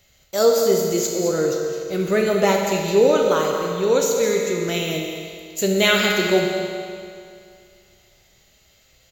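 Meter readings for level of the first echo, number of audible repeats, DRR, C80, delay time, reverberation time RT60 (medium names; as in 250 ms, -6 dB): -10.5 dB, 1, 0.0 dB, 2.5 dB, 213 ms, 2.3 s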